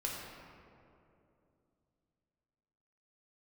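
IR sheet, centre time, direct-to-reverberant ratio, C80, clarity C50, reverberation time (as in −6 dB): 108 ms, −3.0 dB, 1.5 dB, 0.0 dB, 2.7 s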